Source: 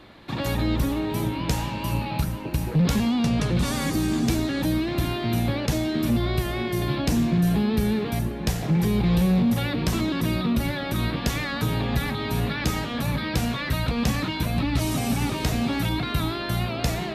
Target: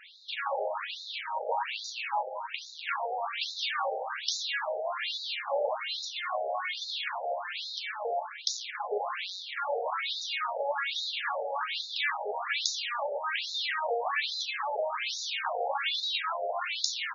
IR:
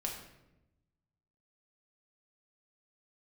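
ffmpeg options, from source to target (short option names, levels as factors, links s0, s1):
-filter_complex "[0:a]aeval=exprs='0.224*(cos(1*acos(clip(val(0)/0.224,-1,1)))-cos(1*PI/2))+0.01*(cos(8*acos(clip(val(0)/0.224,-1,1)))-cos(8*PI/2))':c=same,asplit=2[s0][s1];[s1]adelay=501.5,volume=0.282,highshelf=f=4000:g=-11.3[s2];[s0][s2]amix=inputs=2:normalize=0,afftfilt=real='re*between(b*sr/1024,590*pow(5100/590,0.5+0.5*sin(2*PI*1.2*pts/sr))/1.41,590*pow(5100/590,0.5+0.5*sin(2*PI*1.2*pts/sr))*1.41)':imag='im*between(b*sr/1024,590*pow(5100/590,0.5+0.5*sin(2*PI*1.2*pts/sr))/1.41,590*pow(5100/590,0.5+0.5*sin(2*PI*1.2*pts/sr))*1.41)':win_size=1024:overlap=0.75,volume=1.88"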